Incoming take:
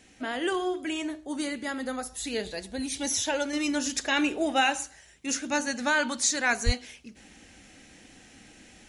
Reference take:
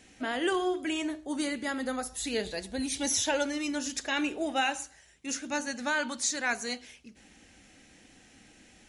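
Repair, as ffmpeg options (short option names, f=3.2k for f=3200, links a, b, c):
-filter_complex "[0:a]asplit=3[a][b][c];[a]afade=t=out:st=6.65:d=0.02[d];[b]highpass=f=140:w=0.5412,highpass=f=140:w=1.3066,afade=t=in:st=6.65:d=0.02,afade=t=out:st=6.77:d=0.02[e];[c]afade=t=in:st=6.77:d=0.02[f];[d][e][f]amix=inputs=3:normalize=0,asetnsamples=n=441:p=0,asendcmd='3.53 volume volume -4.5dB',volume=0dB"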